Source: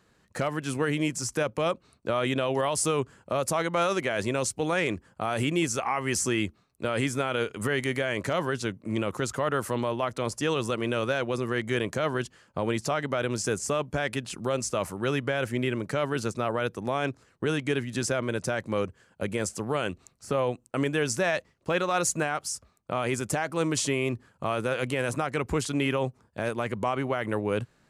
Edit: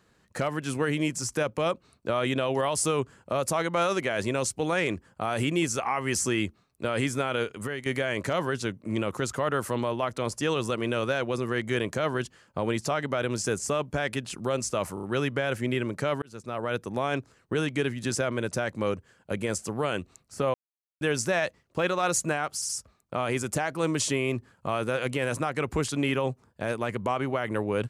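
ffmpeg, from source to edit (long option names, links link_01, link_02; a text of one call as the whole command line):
ffmpeg -i in.wav -filter_complex "[0:a]asplit=10[link_01][link_02][link_03][link_04][link_05][link_06][link_07][link_08][link_09][link_10];[link_01]atrim=end=7.86,asetpts=PTS-STARTPTS,afade=type=out:start_time=7.38:duration=0.48:silence=0.281838[link_11];[link_02]atrim=start=7.86:end=14.972,asetpts=PTS-STARTPTS,afade=type=in:duration=0.004:curve=hsin:silence=0.281838[link_12];[link_03]atrim=start=14.938:end=14.972[link_13];[link_04]atrim=start=14.938:end=14.972[link_14];[link_05]atrim=start=14.938:end=16.13,asetpts=PTS-STARTPTS,afade=type=out:start_time=1.188:duration=0.004:curve=hsin[link_15];[link_06]atrim=start=16.13:end=20.45,asetpts=PTS-STARTPTS,afade=type=in:duration=0.56,afade=type=out:start_time=4.316:duration=0.004:curve=hsin[link_16];[link_07]atrim=start=20.45:end=20.92,asetpts=PTS-STARTPTS,volume=0[link_17];[link_08]atrim=start=20.92:end=22.532,asetpts=PTS-STARTPTS,afade=type=in:duration=0.004:curve=hsin[link_18];[link_09]atrim=start=22.458:end=22.532[link_19];[link_10]atrim=start=22.458[link_20];[link_11][link_12]concat=n=2:v=0:a=1[link_21];[link_21][link_13]acrossfade=duration=0.004:curve1=hsin:curve2=hsin[link_22];[link_22][link_14]acrossfade=duration=0.004:curve1=hsin:curve2=hsin[link_23];[link_15][link_16][link_17][link_18]concat=n=4:v=0:a=1[link_24];[link_23][link_24]acrossfade=duration=0.004:curve1=hsin:curve2=hsin[link_25];[link_25][link_19]acrossfade=duration=0.004:curve1=hsin:curve2=hsin[link_26];[link_26][link_20]acrossfade=duration=0.004:curve1=hsin:curve2=hsin" out.wav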